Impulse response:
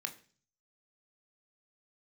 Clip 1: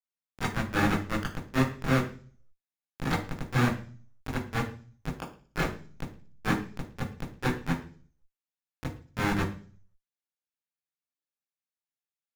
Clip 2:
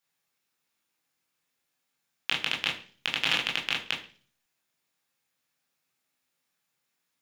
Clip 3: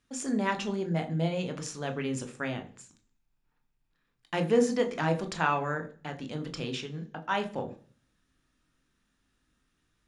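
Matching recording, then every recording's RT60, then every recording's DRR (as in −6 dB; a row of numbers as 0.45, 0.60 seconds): 3; 0.40, 0.40, 0.40 seconds; −9.0, −3.0, 6.0 decibels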